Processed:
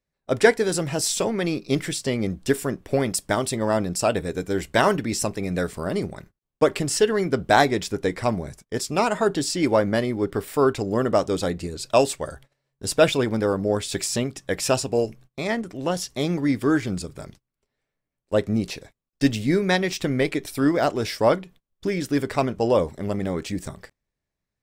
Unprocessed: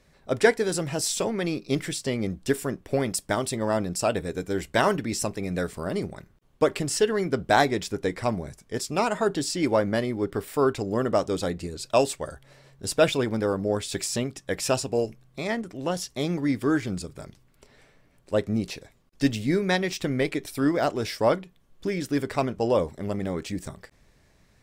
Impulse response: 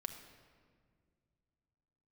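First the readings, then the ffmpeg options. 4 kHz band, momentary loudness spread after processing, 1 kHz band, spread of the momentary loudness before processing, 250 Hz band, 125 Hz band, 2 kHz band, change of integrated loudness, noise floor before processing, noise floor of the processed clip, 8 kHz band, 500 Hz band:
+3.0 dB, 9 LU, +3.0 dB, 9 LU, +3.0 dB, +3.0 dB, +3.0 dB, +3.0 dB, −61 dBFS, −84 dBFS, +3.0 dB, +3.0 dB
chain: -af "agate=range=-27dB:threshold=-48dB:ratio=16:detection=peak,volume=3dB"

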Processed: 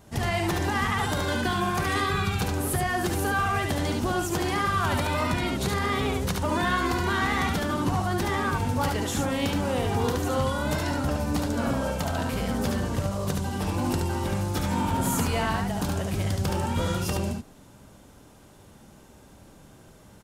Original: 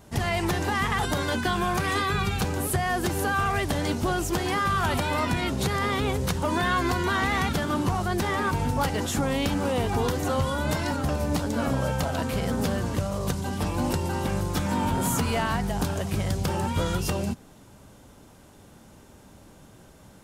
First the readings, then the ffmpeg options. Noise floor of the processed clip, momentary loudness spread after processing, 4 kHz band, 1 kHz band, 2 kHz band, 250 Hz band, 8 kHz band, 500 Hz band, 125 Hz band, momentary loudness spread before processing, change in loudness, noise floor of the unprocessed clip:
−52 dBFS, 3 LU, −0.5 dB, −0.5 dB, −0.5 dB, 0.0 dB, −0.5 dB, −0.5 dB, 0.0 dB, 3 LU, −0.5 dB, −51 dBFS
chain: -af "aecho=1:1:72:0.668,volume=-2dB"

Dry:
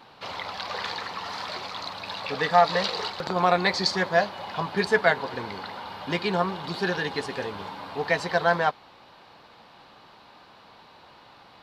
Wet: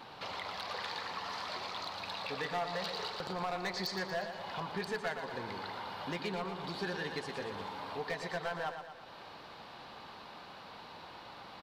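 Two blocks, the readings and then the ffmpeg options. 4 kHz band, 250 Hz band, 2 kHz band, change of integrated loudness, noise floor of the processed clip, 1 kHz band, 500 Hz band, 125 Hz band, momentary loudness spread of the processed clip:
−9.5 dB, −11.0 dB, −12.5 dB, −13.0 dB, −51 dBFS, −12.5 dB, −13.0 dB, −11.0 dB, 13 LU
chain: -af "acompressor=threshold=-46dB:ratio=2,volume=31.5dB,asoftclip=hard,volume=-31.5dB,aecho=1:1:117|234|351|468|585|702|819:0.398|0.219|0.12|0.0662|0.0364|0.02|0.011,volume=1dB"

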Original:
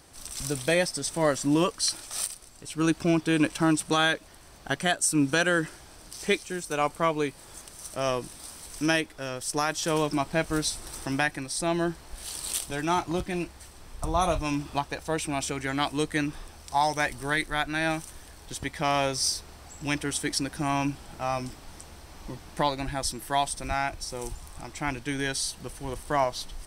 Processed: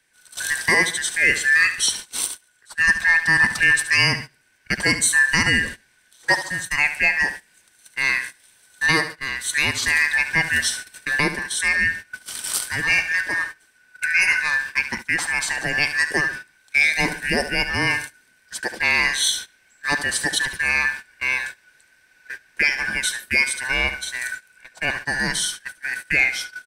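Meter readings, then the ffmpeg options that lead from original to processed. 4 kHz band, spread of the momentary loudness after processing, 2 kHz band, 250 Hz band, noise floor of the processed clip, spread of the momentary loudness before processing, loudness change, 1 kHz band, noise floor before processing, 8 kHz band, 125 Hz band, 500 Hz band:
+7.5 dB, 13 LU, +15.0 dB, −4.5 dB, −59 dBFS, 16 LU, +8.5 dB, −2.0 dB, −49 dBFS, +6.0 dB, −0.5 dB, −4.5 dB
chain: -filter_complex "[0:a]afftfilt=real='real(if(lt(b,272),68*(eq(floor(b/68),0)*1+eq(floor(b/68),1)*0+eq(floor(b/68),2)*3+eq(floor(b/68),3)*2)+mod(b,68),b),0)':imag='imag(if(lt(b,272),68*(eq(floor(b/68),0)*1+eq(floor(b/68),1)*0+eq(floor(b/68),2)*3+eq(floor(b/68),3)*2)+mod(b,68),b),0)':win_size=2048:overlap=0.75,aecho=1:1:72|144|216|288:0.251|0.1|0.0402|0.0161,acrossover=split=210|2600[link_01][link_02][link_03];[link_01]alimiter=level_in=7.5dB:limit=-24dB:level=0:latency=1,volume=-7.5dB[link_04];[link_04][link_02][link_03]amix=inputs=3:normalize=0,agate=range=-18dB:threshold=-36dB:ratio=16:detection=peak,acontrast=64"

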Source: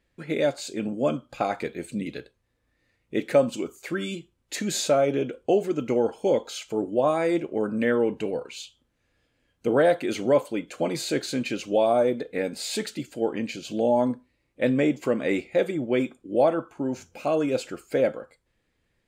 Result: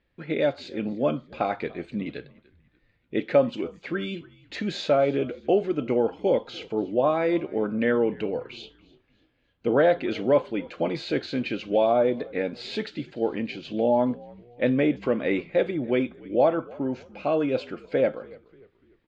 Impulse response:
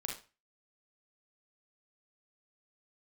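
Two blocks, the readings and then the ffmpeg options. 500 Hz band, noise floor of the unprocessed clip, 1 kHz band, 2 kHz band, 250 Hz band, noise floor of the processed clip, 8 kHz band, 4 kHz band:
0.0 dB, −73 dBFS, 0.0 dB, 0.0 dB, 0.0 dB, −68 dBFS, below −15 dB, −2.5 dB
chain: -filter_complex "[0:a]lowpass=frequency=4100:width=0.5412,lowpass=frequency=4100:width=1.3066,asplit=2[link_01][link_02];[link_02]asplit=3[link_03][link_04][link_05];[link_03]adelay=292,afreqshift=-61,volume=-23dB[link_06];[link_04]adelay=584,afreqshift=-122,volume=-30.7dB[link_07];[link_05]adelay=876,afreqshift=-183,volume=-38.5dB[link_08];[link_06][link_07][link_08]amix=inputs=3:normalize=0[link_09];[link_01][link_09]amix=inputs=2:normalize=0"

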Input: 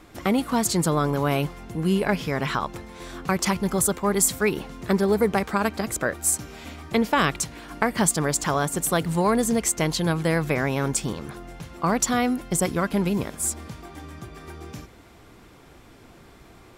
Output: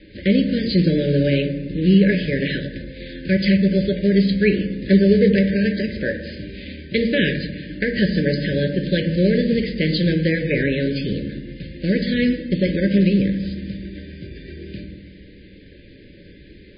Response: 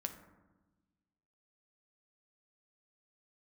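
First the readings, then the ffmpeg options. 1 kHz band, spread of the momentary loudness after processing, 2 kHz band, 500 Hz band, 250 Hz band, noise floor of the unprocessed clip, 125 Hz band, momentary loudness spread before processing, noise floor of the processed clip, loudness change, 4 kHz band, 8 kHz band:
below −30 dB, 18 LU, +3.5 dB, +4.5 dB, +7.5 dB, −50 dBFS, +7.0 dB, 18 LU, −45 dBFS, +4.5 dB, +4.5 dB, below −40 dB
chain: -filter_complex "[0:a]acrusher=bits=4:mode=log:mix=0:aa=0.000001,asuperstop=centerf=970:order=20:qfactor=0.96[link_01];[1:a]atrim=start_sample=2205[link_02];[link_01][link_02]afir=irnorm=-1:irlink=0,volume=6.5dB" -ar 11025 -c:a libmp3lame -b:a 16k

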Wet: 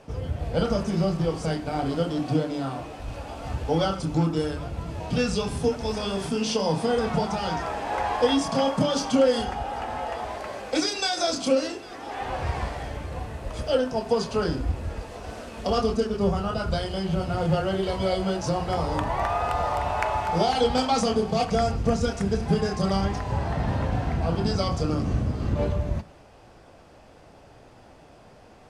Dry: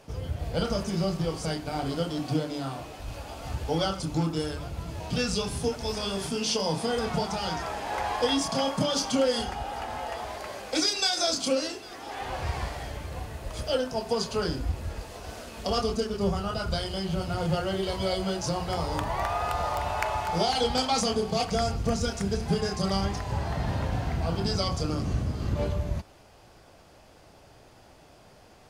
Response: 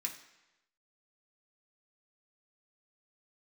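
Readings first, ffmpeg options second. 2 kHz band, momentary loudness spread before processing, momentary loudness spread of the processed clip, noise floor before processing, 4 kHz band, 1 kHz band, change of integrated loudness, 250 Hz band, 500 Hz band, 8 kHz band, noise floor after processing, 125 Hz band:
+2.0 dB, 11 LU, 10 LU, −54 dBFS, −1.5 dB, +3.5 dB, +3.0 dB, +4.0 dB, +4.0 dB, −2.5 dB, −51 dBFS, +3.5 dB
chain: -filter_complex "[0:a]lowpass=11000,highshelf=frequency=2200:gain=-9.5,asplit=2[link_01][link_02];[1:a]atrim=start_sample=2205[link_03];[link_02][link_03]afir=irnorm=-1:irlink=0,volume=-10.5dB[link_04];[link_01][link_04]amix=inputs=2:normalize=0,volume=4.5dB"

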